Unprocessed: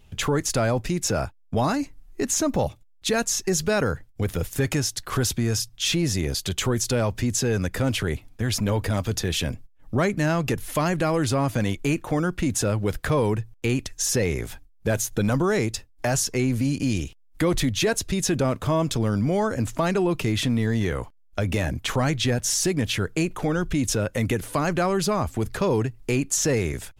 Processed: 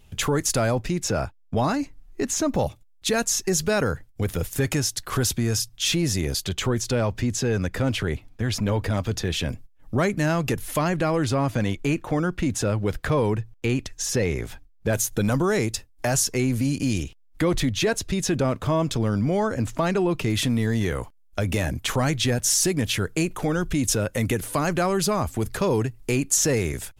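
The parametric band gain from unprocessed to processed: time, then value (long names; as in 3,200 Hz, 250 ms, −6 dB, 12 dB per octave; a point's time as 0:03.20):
parametric band 12,000 Hz 1.4 octaves
+5 dB
from 0:00.75 −4.5 dB
from 0:02.55 +2.5 dB
from 0:06.44 −7 dB
from 0:09.49 +2 dB
from 0:10.79 −6 dB
from 0:14.93 +4 dB
from 0:17.03 −4 dB
from 0:20.30 +5.5 dB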